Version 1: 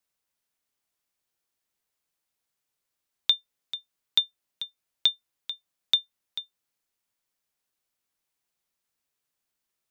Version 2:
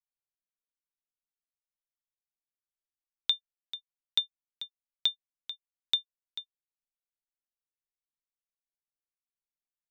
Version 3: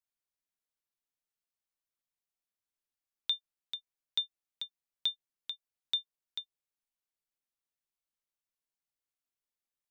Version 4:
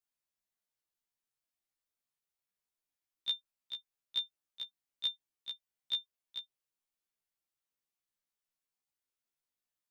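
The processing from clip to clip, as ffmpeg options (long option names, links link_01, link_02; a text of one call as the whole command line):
ffmpeg -i in.wav -af "anlmdn=0.0398,volume=-5dB" out.wav
ffmpeg -i in.wav -af "alimiter=limit=-21.5dB:level=0:latency=1:release=33" out.wav
ffmpeg -i in.wav -af "afftfilt=real='re*1.73*eq(mod(b,3),0)':imag='im*1.73*eq(mod(b,3),0)':win_size=2048:overlap=0.75,volume=2dB" out.wav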